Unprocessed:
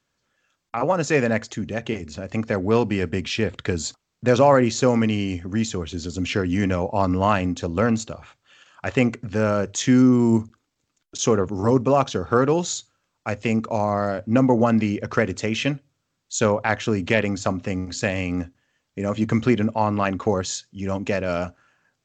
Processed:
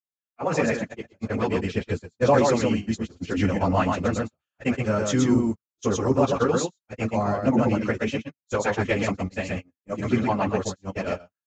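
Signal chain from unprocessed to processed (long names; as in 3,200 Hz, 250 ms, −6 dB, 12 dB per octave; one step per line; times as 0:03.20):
on a send: single-tap delay 234 ms −3.5 dB
on the sum: noise gate −23 dBFS, range −35 dB
time stretch by phase vocoder 0.52×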